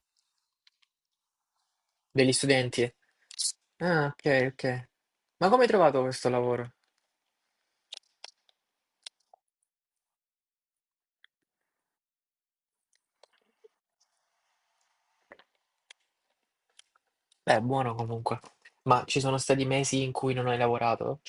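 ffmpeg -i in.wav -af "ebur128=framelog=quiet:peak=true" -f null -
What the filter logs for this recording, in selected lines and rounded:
Integrated loudness:
  I:         -27.5 LUFS
  Threshold: -39.5 LUFS
Loudness range:
  LRA:         7.8 LU
  Threshold: -51.5 LUFS
  LRA low:   -34.8 LUFS
  LRA high:  -27.0 LUFS
True peak:
  Peak:       -6.4 dBFS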